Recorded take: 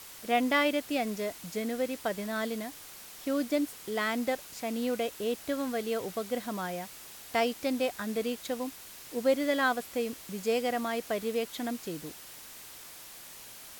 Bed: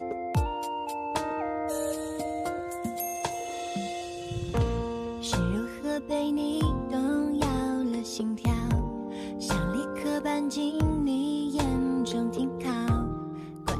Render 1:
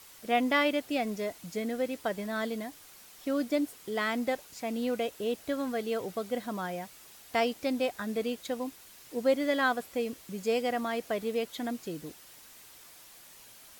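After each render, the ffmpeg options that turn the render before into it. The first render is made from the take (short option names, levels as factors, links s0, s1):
-af "afftdn=nr=6:nf=-48"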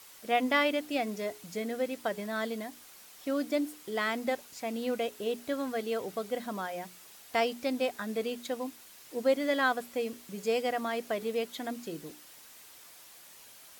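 -af "lowshelf=f=110:g=-9,bandreject=f=60:t=h:w=6,bandreject=f=120:t=h:w=6,bandreject=f=180:t=h:w=6,bandreject=f=240:t=h:w=6,bandreject=f=300:t=h:w=6,bandreject=f=360:t=h:w=6,bandreject=f=420:t=h:w=6"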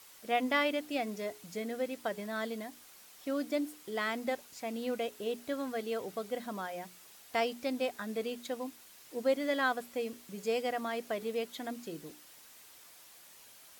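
-af "volume=0.708"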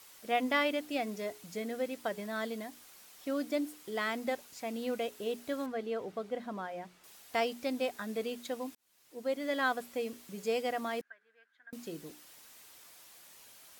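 -filter_complex "[0:a]asettb=1/sr,asplit=3[s0][s1][s2];[s0]atrim=end=5.664[s3];[s1]atrim=start=5.66:end=7.04,asetpts=PTS-STARTPTS,afade=t=in:d=0.004:c=qsin,afade=t=out:st=1.376:d=0.004:c=qsin,aemphasis=mode=reproduction:type=75kf[s4];[s2]atrim=start=7.036[s5];[s3][s4]acrossfade=d=0.004:c1=hsin:c2=qsin[s6];[s6][s5]acrossfade=d=0.004:c1=qsin:c2=hsin,asettb=1/sr,asplit=3[s7][s8][s9];[s7]atrim=end=11.014[s10];[s8]atrim=start=11.01:end=11.73,asetpts=PTS-STARTPTS,afade=t=in:d=0.004:c=qsin,afade=t=out:st=0.716:d=0.004:c=qsin,bandpass=f=1600:t=q:w=18[s11];[s9]atrim=start=11.726[s12];[s10][s11]acrossfade=d=0.004:c1=hsin:c2=qsin[s13];[s13][s12]acrossfade=d=0.004:c1=qsin:c2=hsin,asplit=2[s14][s15];[s14]atrim=end=8.75,asetpts=PTS-STARTPTS,afade=t=out:st=8.746:d=0.004:c=hsin[s16];[s15]atrim=start=8.75,asetpts=PTS-STARTPTS,afade=t=in:d=0.93[s17];[s16][s17]concat=n=2:v=0:a=1"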